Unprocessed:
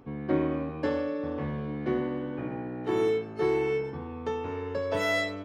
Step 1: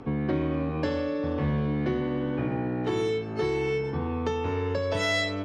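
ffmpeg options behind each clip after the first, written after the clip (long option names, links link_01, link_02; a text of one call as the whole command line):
ffmpeg -i in.wav -filter_complex "[0:a]lowpass=7100,asplit=2[link_01][link_02];[link_02]alimiter=limit=-23.5dB:level=0:latency=1:release=423,volume=1dB[link_03];[link_01][link_03]amix=inputs=2:normalize=0,acrossover=split=150|3000[link_04][link_05][link_06];[link_05]acompressor=threshold=-33dB:ratio=3[link_07];[link_04][link_07][link_06]amix=inputs=3:normalize=0,volume=4dB" out.wav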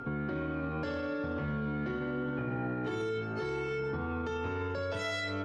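ffmpeg -i in.wav -af "flanger=delay=7.7:depth=1.9:regen=72:speed=0.86:shape=triangular,alimiter=level_in=5dB:limit=-24dB:level=0:latency=1:release=55,volume=-5dB,aeval=exprs='val(0)+0.00708*sin(2*PI*1400*n/s)':channel_layout=same,volume=1.5dB" out.wav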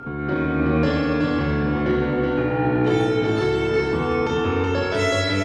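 ffmpeg -i in.wav -filter_complex "[0:a]asplit=2[link_01][link_02];[link_02]aecho=0:1:30|69|119.7|185.6|271.3:0.631|0.398|0.251|0.158|0.1[link_03];[link_01][link_03]amix=inputs=2:normalize=0,dynaudnorm=framelen=170:gausssize=3:maxgain=8dB,asplit=2[link_04][link_05];[link_05]aecho=0:1:374:0.668[link_06];[link_04][link_06]amix=inputs=2:normalize=0,volume=4dB" out.wav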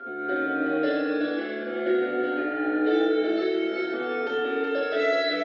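ffmpeg -i in.wav -filter_complex "[0:a]asuperstop=centerf=1000:order=4:qfactor=1.4,highpass=frequency=310:width=0.5412,highpass=frequency=310:width=1.3066,equalizer=frequency=330:width_type=q:width=4:gain=4,equalizer=frequency=670:width_type=q:width=4:gain=7,equalizer=frequency=990:width_type=q:width=4:gain=10,equalizer=frequency=1400:width_type=q:width=4:gain=6,equalizer=frequency=2500:width_type=q:width=4:gain=-5,equalizer=frequency=3700:width_type=q:width=4:gain=4,lowpass=frequency=4200:width=0.5412,lowpass=frequency=4200:width=1.3066,asplit=2[link_01][link_02];[link_02]adelay=5.4,afreqshift=0.5[link_03];[link_01][link_03]amix=inputs=2:normalize=1,volume=-2dB" out.wav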